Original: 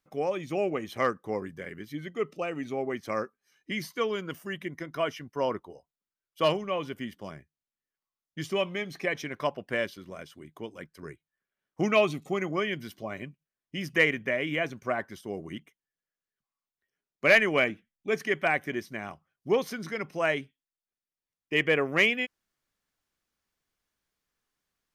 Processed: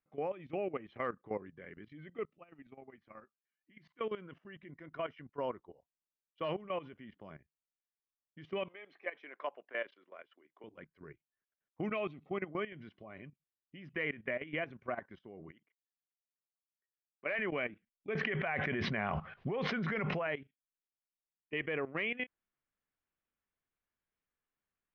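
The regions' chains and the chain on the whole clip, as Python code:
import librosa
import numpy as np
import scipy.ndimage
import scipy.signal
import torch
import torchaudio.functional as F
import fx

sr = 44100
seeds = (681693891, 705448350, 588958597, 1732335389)

y = fx.chain(x, sr, fx.peak_eq(hz=460.0, db=-8.0, octaves=0.53),
    fx.level_steps(step_db=15), at=(2.25, 4.01))
y = fx.chain(y, sr, fx.bessel_highpass(hz=500.0, order=4),
    fx.high_shelf(hz=5100.0, db=-6.5), at=(8.68, 10.64))
y = fx.chain(y, sr, fx.bass_treble(bass_db=-11, treble_db=-11),
    fx.level_steps(step_db=12), at=(15.51, 17.39))
y = fx.chain(y, sr, fx.lowpass(hz=5200.0, slope=12),
    fx.peak_eq(hz=310.0, db=-13.5, octaves=0.27),
    fx.env_flatten(amount_pct=100), at=(18.15, 20.27))
y = scipy.signal.sosfilt(scipy.signal.butter(4, 2900.0, 'lowpass', fs=sr, output='sos'), y)
y = fx.level_steps(y, sr, step_db=15)
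y = y * librosa.db_to_amplitude(-5.0)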